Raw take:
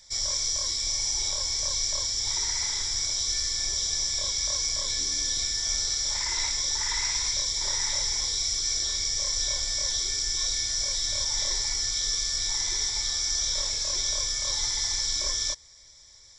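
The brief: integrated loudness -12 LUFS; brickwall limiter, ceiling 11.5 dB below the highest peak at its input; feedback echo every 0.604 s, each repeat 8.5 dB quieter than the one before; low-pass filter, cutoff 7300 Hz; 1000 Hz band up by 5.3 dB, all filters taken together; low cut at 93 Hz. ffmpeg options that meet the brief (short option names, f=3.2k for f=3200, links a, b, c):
-af "highpass=93,lowpass=7.3k,equalizer=f=1k:t=o:g=6,alimiter=level_in=3.5dB:limit=-24dB:level=0:latency=1,volume=-3.5dB,aecho=1:1:604|1208|1812|2416:0.376|0.143|0.0543|0.0206,volume=21dB"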